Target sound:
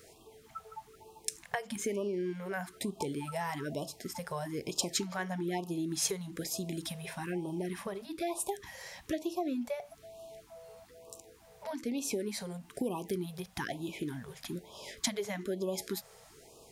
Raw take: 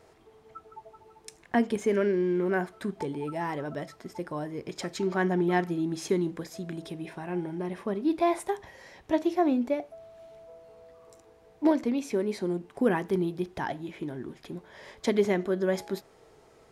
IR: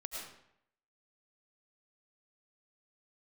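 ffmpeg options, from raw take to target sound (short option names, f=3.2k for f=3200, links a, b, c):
-af "acompressor=threshold=-32dB:ratio=5,crystalizer=i=3:c=0,afftfilt=real='re*(1-between(b*sr/1024,270*pow(1800/270,0.5+0.5*sin(2*PI*1.1*pts/sr))/1.41,270*pow(1800/270,0.5+0.5*sin(2*PI*1.1*pts/sr))*1.41))':imag='im*(1-between(b*sr/1024,270*pow(1800/270,0.5+0.5*sin(2*PI*1.1*pts/sr))/1.41,270*pow(1800/270,0.5+0.5*sin(2*PI*1.1*pts/sr))*1.41))':win_size=1024:overlap=0.75"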